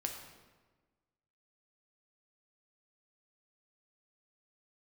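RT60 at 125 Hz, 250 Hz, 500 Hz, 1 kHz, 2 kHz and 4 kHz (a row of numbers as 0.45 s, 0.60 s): 1.5 s, 1.6 s, 1.4 s, 1.3 s, 1.1 s, 0.90 s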